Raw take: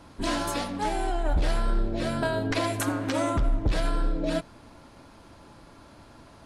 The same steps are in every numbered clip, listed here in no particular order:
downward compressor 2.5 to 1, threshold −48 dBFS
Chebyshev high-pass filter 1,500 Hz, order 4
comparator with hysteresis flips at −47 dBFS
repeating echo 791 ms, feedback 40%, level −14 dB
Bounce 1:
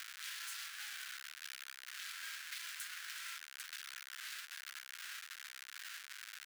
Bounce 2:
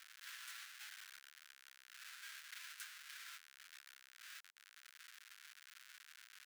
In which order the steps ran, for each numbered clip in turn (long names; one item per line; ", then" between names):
repeating echo, then comparator with hysteresis, then Chebyshev high-pass filter, then downward compressor
downward compressor, then repeating echo, then comparator with hysteresis, then Chebyshev high-pass filter